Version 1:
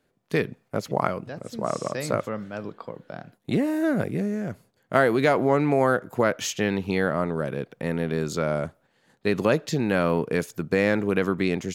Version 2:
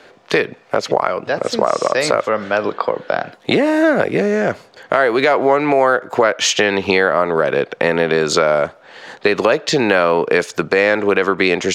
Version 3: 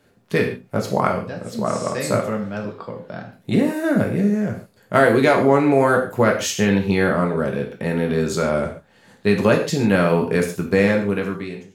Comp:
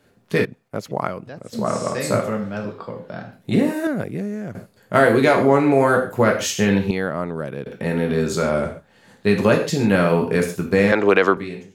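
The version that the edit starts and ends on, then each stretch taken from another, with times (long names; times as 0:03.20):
3
0:00.45–0:01.53: punch in from 1
0:03.87–0:04.55: punch in from 1
0:06.91–0:07.66: punch in from 1
0:10.92–0:11.37: punch in from 2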